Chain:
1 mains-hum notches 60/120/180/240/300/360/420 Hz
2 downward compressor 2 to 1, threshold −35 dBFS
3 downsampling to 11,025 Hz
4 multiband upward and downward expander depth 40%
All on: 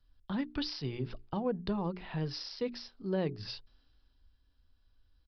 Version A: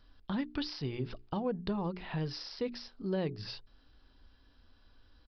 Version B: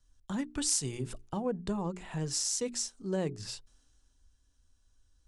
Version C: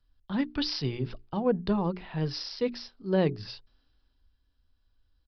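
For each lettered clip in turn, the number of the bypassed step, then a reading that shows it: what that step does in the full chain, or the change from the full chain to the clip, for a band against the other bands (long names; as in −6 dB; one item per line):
4, change in crest factor −1.5 dB
3, 4 kHz band +3.0 dB
2, average gain reduction 3.0 dB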